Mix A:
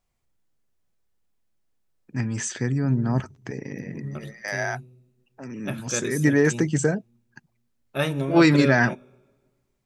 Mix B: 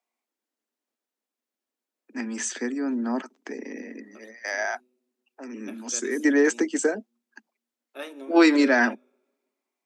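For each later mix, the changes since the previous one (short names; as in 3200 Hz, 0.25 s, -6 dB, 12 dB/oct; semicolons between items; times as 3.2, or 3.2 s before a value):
second voice -11.5 dB; master: add steep high-pass 220 Hz 96 dB/oct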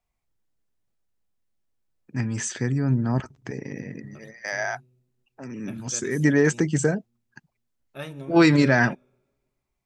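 master: remove steep high-pass 220 Hz 96 dB/oct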